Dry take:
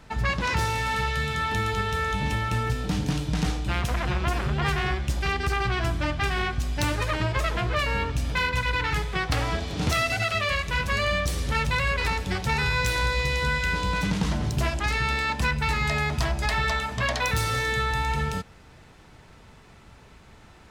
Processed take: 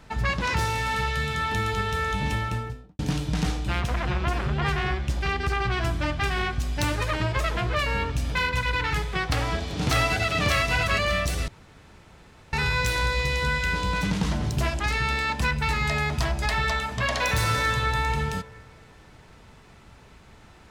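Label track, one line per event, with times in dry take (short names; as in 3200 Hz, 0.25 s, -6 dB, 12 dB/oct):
2.340000	2.990000	studio fade out
3.800000	5.710000	high shelf 7100 Hz -8 dB
9.290000	10.390000	echo throw 0.59 s, feedback 30%, level -1.5 dB
11.480000	12.530000	room tone
17.020000	17.720000	reverb throw, RT60 2.6 s, DRR 3 dB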